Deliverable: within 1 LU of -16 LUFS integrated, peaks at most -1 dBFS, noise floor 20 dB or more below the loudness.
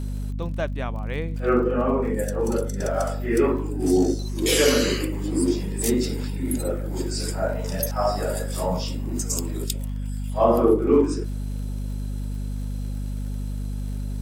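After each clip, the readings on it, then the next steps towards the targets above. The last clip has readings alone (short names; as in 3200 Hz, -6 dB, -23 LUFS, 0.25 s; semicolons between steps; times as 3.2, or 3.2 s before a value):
ticks 48/s; hum 50 Hz; harmonics up to 250 Hz; hum level -26 dBFS; loudness -24.5 LUFS; peak -5.0 dBFS; loudness target -16.0 LUFS
-> de-click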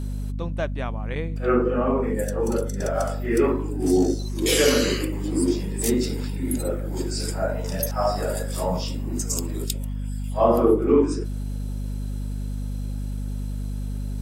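ticks 0.14/s; hum 50 Hz; harmonics up to 250 Hz; hum level -26 dBFS
-> de-hum 50 Hz, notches 5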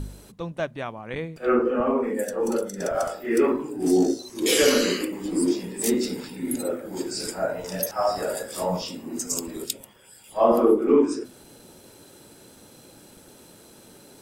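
hum none; loudness -24.5 LUFS; peak -6.0 dBFS; loudness target -16.0 LUFS
-> gain +8.5 dB; limiter -1 dBFS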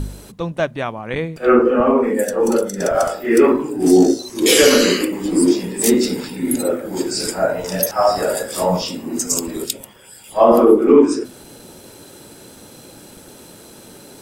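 loudness -16.5 LUFS; peak -1.0 dBFS; noise floor -42 dBFS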